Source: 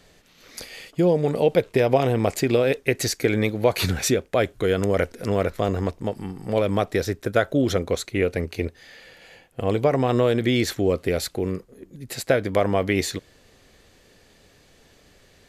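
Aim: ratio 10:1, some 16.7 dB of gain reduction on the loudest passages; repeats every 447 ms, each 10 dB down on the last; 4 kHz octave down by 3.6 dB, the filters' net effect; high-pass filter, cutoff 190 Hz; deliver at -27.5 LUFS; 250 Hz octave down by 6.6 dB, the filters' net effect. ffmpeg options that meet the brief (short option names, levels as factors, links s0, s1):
-af "highpass=190,equalizer=f=250:t=o:g=-7.5,equalizer=f=4000:t=o:g=-4.5,acompressor=threshold=0.0224:ratio=10,aecho=1:1:447|894|1341|1788:0.316|0.101|0.0324|0.0104,volume=3.55"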